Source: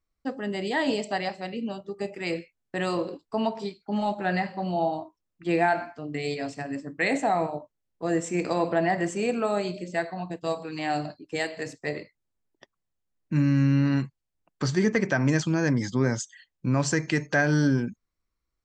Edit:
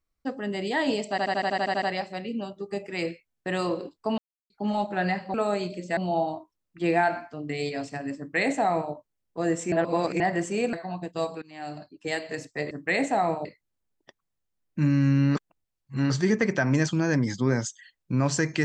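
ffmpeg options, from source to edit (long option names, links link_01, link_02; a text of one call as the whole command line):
ffmpeg -i in.wav -filter_complex "[0:a]asplit=22[link_01][link_02][link_03][link_04][link_05][link_06][link_07][link_08][link_09][link_10][link_11][link_12][link_13][link_14][link_15][link_16][link_17][link_18][link_19][link_20][link_21][link_22];[link_01]atrim=end=1.182[link_23];[link_02]atrim=start=1.098:end=1.182[link_24];[link_03]atrim=start=1.098:end=1.182[link_25];[link_04]atrim=start=1.098:end=1.182[link_26];[link_05]atrim=start=1.098:end=1.182[link_27];[link_06]atrim=start=1.098:end=1.182[link_28];[link_07]atrim=start=1.098:end=1.182[link_29];[link_08]atrim=start=1.098:end=1.182[link_30];[link_09]atrim=start=1.098:end=1.182[link_31];[link_10]atrim=start=1.098:end=3.46,asetpts=PTS-STARTPTS,afade=type=out:start_time=2.358:duration=0.004:curve=hsin[link_32];[link_11]atrim=start=3.46:end=3.78,asetpts=PTS-STARTPTS,volume=0[link_33];[link_12]atrim=start=3.78:end=4.622,asetpts=PTS-STARTPTS,afade=type=in:duration=0.004:curve=hsin[link_34];[link_13]atrim=start=9.378:end=10.012[link_35];[link_14]atrim=start=4.618:end=8.372[link_36];[link_15]atrim=start=8.368:end=8.852,asetpts=PTS-STARTPTS,areverse[link_37];[link_16]atrim=start=8.848:end=9.382[link_38];[link_17]atrim=start=10.008:end=10.7,asetpts=PTS-STARTPTS,afade=type=out:start_time=0.688:duration=0.004:curve=hsin:silence=0.0707946[link_39];[link_18]atrim=start=10.7:end=11.992,asetpts=PTS-STARTPTS,afade=type=in:duration=0.78:silence=0.0707946[link_40];[link_19]atrim=start=6.828:end=7.572[link_41];[link_20]atrim=start=11.988:end=13.892[link_42];[link_21]atrim=start=13.888:end=14.642,asetpts=PTS-STARTPTS,areverse[link_43];[link_22]atrim=start=14.638[link_44];[link_23][link_24]acrossfade=duration=0.004:curve1=hsin:curve2=hsin[link_45];[link_45][link_25]acrossfade=duration=0.004:curve1=hsin:curve2=hsin[link_46];[link_46][link_26]acrossfade=duration=0.004:curve1=hsin:curve2=hsin[link_47];[link_47][link_27]acrossfade=duration=0.004:curve1=hsin:curve2=hsin[link_48];[link_48][link_28]acrossfade=duration=0.004:curve1=hsin:curve2=hsin[link_49];[link_49][link_29]acrossfade=duration=0.004:curve1=hsin:curve2=hsin[link_50];[link_50][link_30]acrossfade=duration=0.004:curve1=hsin:curve2=hsin[link_51];[link_51][link_31]acrossfade=duration=0.004:curve1=hsin:curve2=hsin[link_52];[link_32][link_33][link_34]concat=n=3:v=0:a=1[link_53];[link_52][link_53]acrossfade=duration=0.004:curve1=hsin:curve2=hsin[link_54];[link_54][link_35]acrossfade=duration=0.004:curve1=hsin:curve2=hsin[link_55];[link_55][link_36]acrossfade=duration=0.004:curve1=hsin:curve2=hsin[link_56];[link_56][link_37]acrossfade=duration=0.004:curve1=hsin:curve2=hsin[link_57];[link_57][link_38]acrossfade=duration=0.004:curve1=hsin:curve2=hsin[link_58];[link_39][link_40]concat=n=2:v=0:a=1[link_59];[link_58][link_59]acrossfade=duration=0.004:curve1=hsin:curve2=hsin[link_60];[link_60][link_41]acrossfade=duration=0.004:curve1=hsin:curve2=hsin[link_61];[link_61][link_42]acrossfade=duration=0.004:curve1=hsin:curve2=hsin[link_62];[link_62][link_43]acrossfade=duration=0.004:curve1=hsin:curve2=hsin[link_63];[link_63][link_44]acrossfade=duration=0.004:curve1=hsin:curve2=hsin" out.wav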